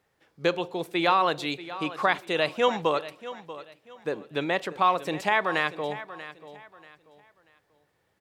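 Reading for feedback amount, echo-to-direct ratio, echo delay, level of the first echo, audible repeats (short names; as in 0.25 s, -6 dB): 29%, -14.5 dB, 0.637 s, -15.0 dB, 2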